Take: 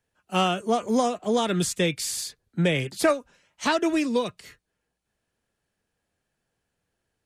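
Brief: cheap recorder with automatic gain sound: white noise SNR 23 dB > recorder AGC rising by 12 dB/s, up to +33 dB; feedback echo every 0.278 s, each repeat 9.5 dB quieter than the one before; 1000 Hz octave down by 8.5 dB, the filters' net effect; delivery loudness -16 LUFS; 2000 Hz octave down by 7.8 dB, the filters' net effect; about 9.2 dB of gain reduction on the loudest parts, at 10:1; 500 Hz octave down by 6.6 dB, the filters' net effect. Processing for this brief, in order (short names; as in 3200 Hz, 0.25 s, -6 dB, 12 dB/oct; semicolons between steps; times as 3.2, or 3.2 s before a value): bell 500 Hz -5.5 dB; bell 1000 Hz -8 dB; bell 2000 Hz -8 dB; compressor 10:1, threshold -30 dBFS; feedback echo 0.278 s, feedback 33%, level -9.5 dB; white noise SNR 23 dB; recorder AGC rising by 12 dB/s, up to +33 dB; gain +19 dB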